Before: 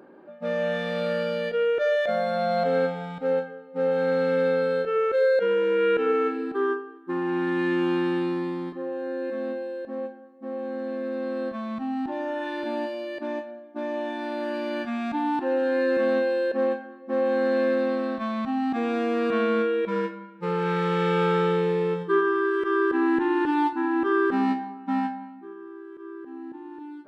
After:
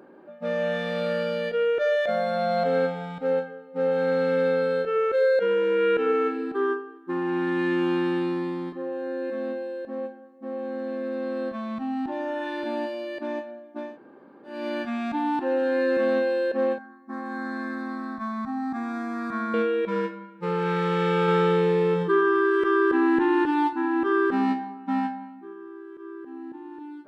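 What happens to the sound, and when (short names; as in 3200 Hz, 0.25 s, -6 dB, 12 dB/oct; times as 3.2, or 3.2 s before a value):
13.86–14.55 room tone, crossfade 0.24 s
16.78–19.54 fixed phaser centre 1200 Hz, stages 4
21.28–23.44 fast leveller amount 50%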